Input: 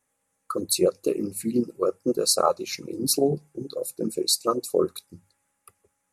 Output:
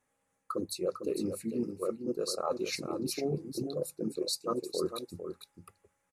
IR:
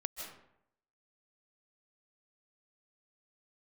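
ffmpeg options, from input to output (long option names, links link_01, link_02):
-af "highshelf=frequency=5900:gain=-10.5,areverse,acompressor=threshold=-30dB:ratio=6,areverse,aecho=1:1:451:0.398"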